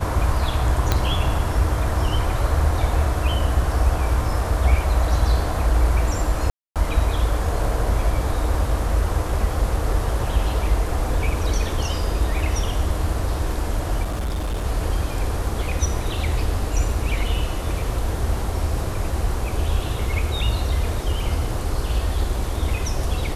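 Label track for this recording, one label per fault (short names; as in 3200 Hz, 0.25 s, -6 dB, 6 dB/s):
0.920000	0.920000	pop -4 dBFS
6.500000	6.760000	gap 0.257 s
14.030000	14.650000	clipped -21 dBFS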